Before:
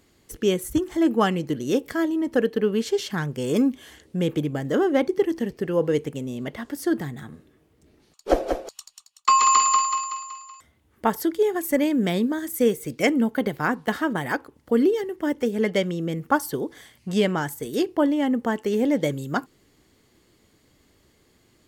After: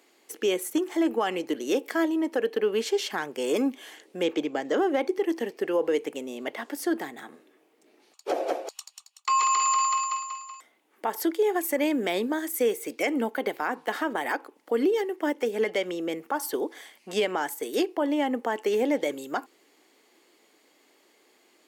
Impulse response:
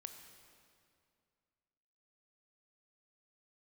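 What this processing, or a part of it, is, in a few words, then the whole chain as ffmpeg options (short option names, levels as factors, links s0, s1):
laptop speaker: -filter_complex "[0:a]asettb=1/sr,asplit=3[s0][s1][s2];[s0]atrim=end=4.234[s3];[s1]atrim=start=4.23:end=4.78,asetpts=PTS-STARTPTS,afade=t=in:d=0.004:c=qsin,afade=t=out:st=0.546:d=0.004:c=qsin,highshelf=f=8000:t=q:w=1.5:g=-9.5[s4];[s2]atrim=start=4.776[s5];[s3][s4]acrossfade=d=0.004:c1=hsin:c2=qsin[s6];[s6][s5]acrossfade=d=0.004:c1=qsin:c2=hsin,highpass=f=300:w=0.5412,highpass=f=300:w=1.3066,equalizer=f=800:t=o:w=0.56:g=5,equalizer=f=2400:t=o:w=0.52:g=4.5,alimiter=limit=0.158:level=0:latency=1:release=94"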